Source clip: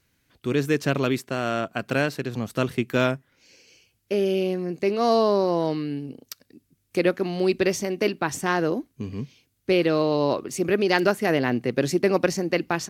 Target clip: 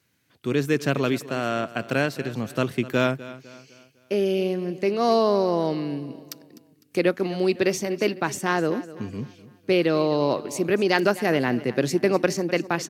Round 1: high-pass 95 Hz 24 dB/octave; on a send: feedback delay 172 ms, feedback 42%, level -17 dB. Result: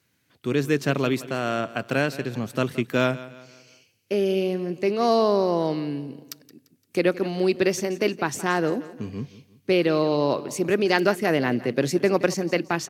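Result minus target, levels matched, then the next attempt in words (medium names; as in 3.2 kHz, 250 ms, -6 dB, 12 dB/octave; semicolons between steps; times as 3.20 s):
echo 80 ms early
high-pass 95 Hz 24 dB/octave; on a send: feedback delay 252 ms, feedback 42%, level -17 dB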